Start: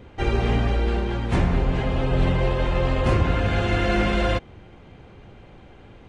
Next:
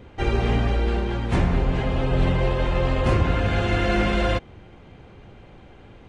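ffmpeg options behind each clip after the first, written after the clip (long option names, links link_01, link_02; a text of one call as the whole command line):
ffmpeg -i in.wav -af anull out.wav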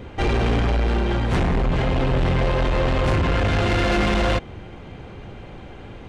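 ffmpeg -i in.wav -af "asoftclip=type=tanh:threshold=-24.5dB,volume=8dB" out.wav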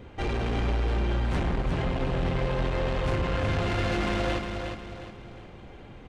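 ffmpeg -i in.wav -af "aecho=1:1:359|718|1077|1436|1795:0.501|0.195|0.0762|0.0297|0.0116,volume=-8.5dB" out.wav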